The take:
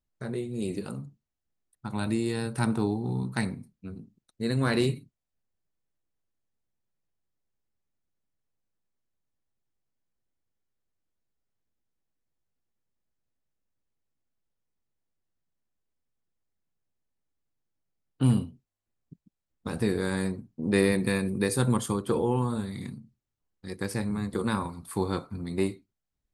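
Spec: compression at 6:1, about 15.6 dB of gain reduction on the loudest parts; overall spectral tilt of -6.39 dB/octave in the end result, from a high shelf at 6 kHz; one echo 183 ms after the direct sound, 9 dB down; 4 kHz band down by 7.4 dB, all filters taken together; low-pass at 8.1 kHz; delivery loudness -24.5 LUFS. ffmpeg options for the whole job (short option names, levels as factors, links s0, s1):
-af "lowpass=8100,equalizer=f=4000:t=o:g=-6.5,highshelf=f=6000:g=-5.5,acompressor=threshold=0.0178:ratio=6,aecho=1:1:183:0.355,volume=5.96"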